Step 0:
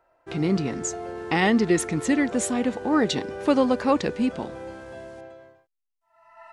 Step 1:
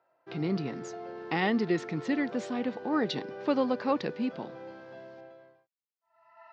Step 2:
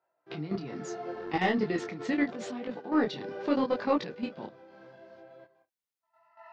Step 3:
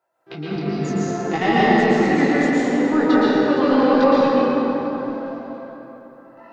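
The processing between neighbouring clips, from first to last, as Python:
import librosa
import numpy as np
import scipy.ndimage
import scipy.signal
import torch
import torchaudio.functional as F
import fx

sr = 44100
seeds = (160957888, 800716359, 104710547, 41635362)

y1 = scipy.signal.sosfilt(scipy.signal.ellip(3, 1.0, 40, [130.0, 4900.0], 'bandpass', fs=sr, output='sos'), x)
y1 = F.gain(torch.from_numpy(y1), -6.5).numpy()
y2 = fx.level_steps(y1, sr, step_db=14)
y2 = 10.0 ** (-17.0 / 20.0) * np.tanh(y2 / 10.0 ** (-17.0 / 20.0))
y2 = fx.detune_double(y2, sr, cents=27)
y2 = F.gain(torch.from_numpy(y2), 7.5).numpy()
y3 = fx.echo_feedback(y2, sr, ms=286, feedback_pct=60, wet_db=-18.5)
y3 = fx.rev_plate(y3, sr, seeds[0], rt60_s=3.7, hf_ratio=0.45, predelay_ms=105, drr_db=-8.0)
y3 = F.gain(torch.from_numpy(y3), 5.0).numpy()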